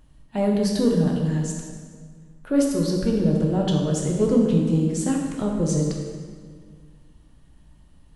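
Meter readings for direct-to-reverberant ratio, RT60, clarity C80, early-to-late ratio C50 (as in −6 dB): −1.0 dB, 1.8 s, 4.0 dB, 2.0 dB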